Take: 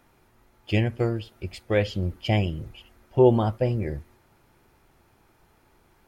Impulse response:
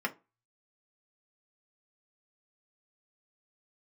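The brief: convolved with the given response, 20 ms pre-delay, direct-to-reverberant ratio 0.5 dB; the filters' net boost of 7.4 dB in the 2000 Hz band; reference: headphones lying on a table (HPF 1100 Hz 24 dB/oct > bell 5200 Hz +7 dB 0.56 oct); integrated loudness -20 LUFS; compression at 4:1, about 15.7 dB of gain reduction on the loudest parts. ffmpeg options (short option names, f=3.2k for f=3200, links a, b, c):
-filter_complex "[0:a]equalizer=f=2k:t=o:g=8.5,acompressor=threshold=-31dB:ratio=4,asplit=2[a][b];[1:a]atrim=start_sample=2205,adelay=20[c];[b][c]afir=irnorm=-1:irlink=0,volume=-7.5dB[d];[a][d]amix=inputs=2:normalize=0,highpass=f=1.1k:w=0.5412,highpass=f=1.1k:w=1.3066,equalizer=f=5.2k:t=o:w=0.56:g=7,volume=18dB"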